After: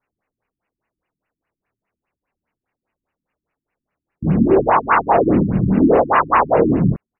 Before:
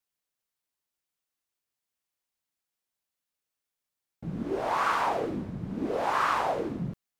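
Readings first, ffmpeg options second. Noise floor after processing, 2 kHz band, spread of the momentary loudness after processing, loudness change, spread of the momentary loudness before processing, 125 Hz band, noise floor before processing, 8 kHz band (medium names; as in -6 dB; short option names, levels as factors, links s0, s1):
under -85 dBFS, +10.0 dB, 4 LU, +14.5 dB, 10 LU, +18.5 dB, under -85 dBFS, under -30 dB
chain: -filter_complex "[0:a]acrusher=bits=5:mode=log:mix=0:aa=0.000001,asplit=2[s0][s1];[s1]adelay=26,volume=0.708[s2];[s0][s2]amix=inputs=2:normalize=0,asoftclip=type=tanh:threshold=0.2,alimiter=level_in=10.6:limit=0.891:release=50:level=0:latency=1,afftfilt=real='re*lt(b*sr/1024,320*pow(3000/320,0.5+0.5*sin(2*PI*4.9*pts/sr)))':imag='im*lt(b*sr/1024,320*pow(3000/320,0.5+0.5*sin(2*PI*4.9*pts/sr)))':win_size=1024:overlap=0.75,volume=0.708"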